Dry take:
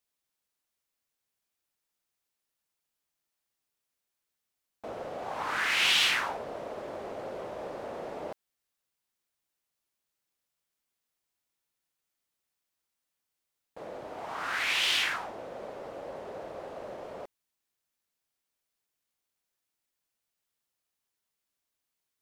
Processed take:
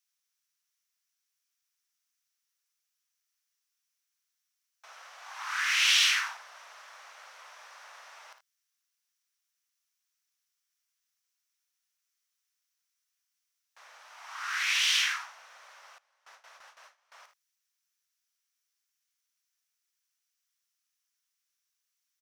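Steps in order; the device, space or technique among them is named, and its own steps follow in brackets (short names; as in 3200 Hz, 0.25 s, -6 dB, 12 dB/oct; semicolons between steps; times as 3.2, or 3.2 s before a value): headphones lying on a table (HPF 1200 Hz 24 dB/oct; bell 5800 Hz +9 dB 0.34 oct); early reflections 56 ms -10.5 dB, 79 ms -14 dB; 15.98–17.12 gate with hold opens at -43 dBFS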